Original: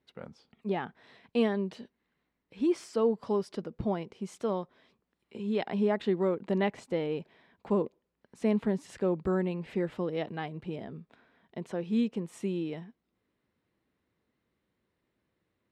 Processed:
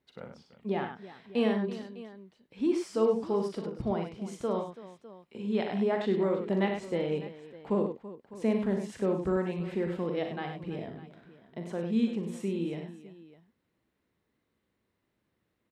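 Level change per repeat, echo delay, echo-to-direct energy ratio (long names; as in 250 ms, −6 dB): repeats not evenly spaced, 41 ms, −3.0 dB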